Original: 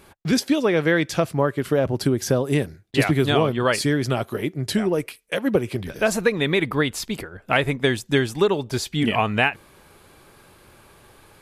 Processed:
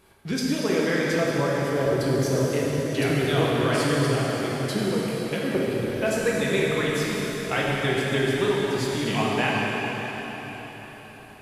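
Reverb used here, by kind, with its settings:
dense smooth reverb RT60 4.8 s, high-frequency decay 0.95×, DRR −5.5 dB
level −8.5 dB

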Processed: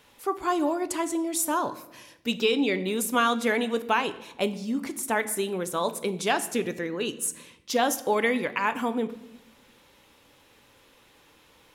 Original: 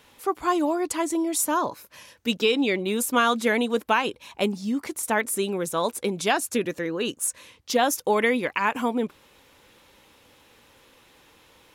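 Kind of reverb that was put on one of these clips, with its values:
rectangular room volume 300 cubic metres, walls mixed, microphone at 0.32 metres
level −2.5 dB

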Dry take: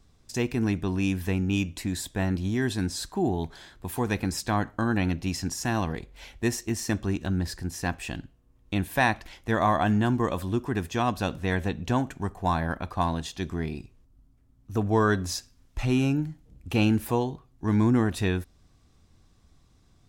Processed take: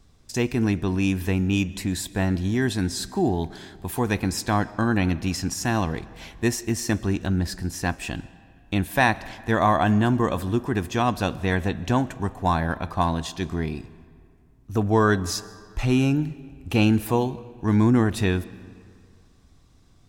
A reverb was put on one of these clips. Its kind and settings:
comb and all-pass reverb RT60 2.2 s, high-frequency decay 0.65×, pre-delay 95 ms, DRR 19 dB
level +3.5 dB

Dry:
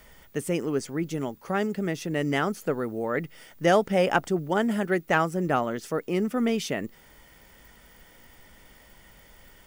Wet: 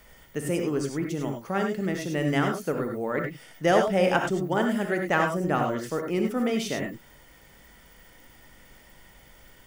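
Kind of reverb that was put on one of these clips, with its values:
reverb whose tail is shaped and stops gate 120 ms rising, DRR 3 dB
level −1.5 dB

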